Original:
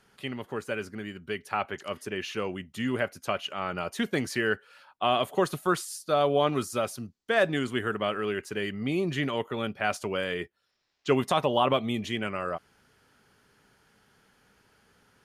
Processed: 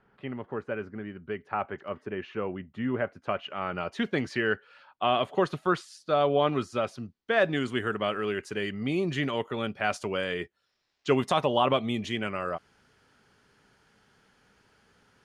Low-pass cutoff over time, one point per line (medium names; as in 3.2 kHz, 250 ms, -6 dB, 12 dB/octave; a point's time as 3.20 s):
3.06 s 1.6 kHz
3.96 s 3.9 kHz
7.34 s 3.9 kHz
7.76 s 8.3 kHz